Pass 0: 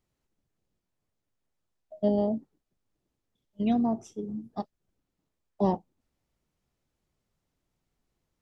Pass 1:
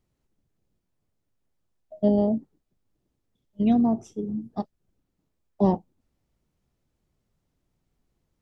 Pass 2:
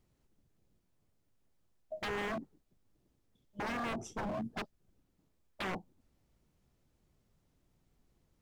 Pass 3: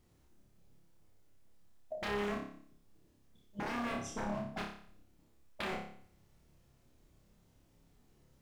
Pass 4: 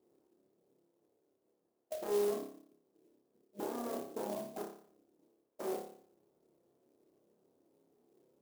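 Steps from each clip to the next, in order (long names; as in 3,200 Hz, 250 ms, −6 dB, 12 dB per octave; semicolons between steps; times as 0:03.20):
low-shelf EQ 490 Hz +6.5 dB
downward compressor 20 to 1, threshold −23 dBFS, peak gain reduction 9 dB; wave folding −33.5 dBFS; level +1.5 dB
downward compressor 6 to 1, threshold −43 dBFS, peak gain reduction 8 dB; on a send: flutter between parallel walls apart 5 metres, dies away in 0.55 s; on the sum: level +4 dB
four-pole ladder band-pass 460 Hz, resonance 45%; high-frequency loss of the air 450 metres; converter with an unsteady clock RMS 0.059 ms; level +13.5 dB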